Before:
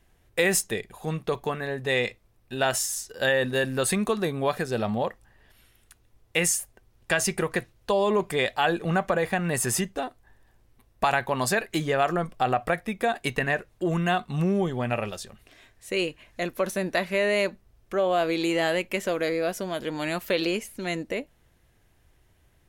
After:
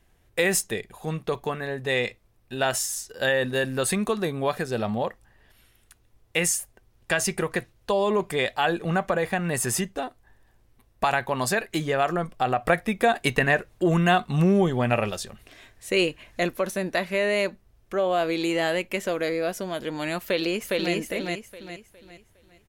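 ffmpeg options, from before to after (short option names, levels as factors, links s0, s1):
-filter_complex "[0:a]asplit=2[s0][s1];[s1]afade=t=in:st=20.19:d=0.01,afade=t=out:st=20.94:d=0.01,aecho=0:1:410|820|1230|1640|2050:0.891251|0.311938|0.109178|0.0382124|0.0133743[s2];[s0][s2]amix=inputs=2:normalize=0,asplit=3[s3][s4][s5];[s3]atrim=end=12.652[s6];[s4]atrim=start=12.648:end=16.562,asetpts=PTS-STARTPTS,volume=1.68[s7];[s5]atrim=start=16.558[s8];[s6][s7]acrossfade=d=0.004:c1=hsin:c2=hsin[s9];[s9][s8]acrossfade=d=0.004:c1=hsin:c2=hsin"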